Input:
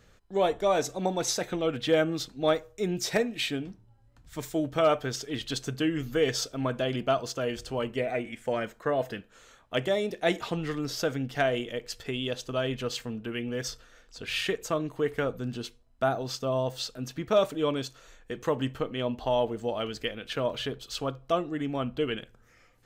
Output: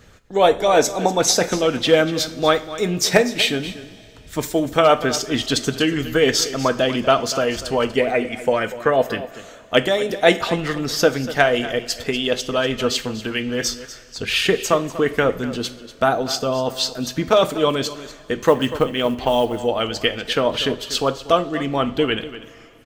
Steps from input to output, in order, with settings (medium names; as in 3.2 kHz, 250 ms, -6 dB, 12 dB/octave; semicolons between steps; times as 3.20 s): 18.40–19.63 s: short-mantissa float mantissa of 4-bit; harmonic-percussive split percussive +7 dB; on a send: delay 242 ms -15 dB; on the sum: two-slope reverb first 0.36 s, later 3.3 s, from -18 dB, DRR 10.5 dB; trim +6 dB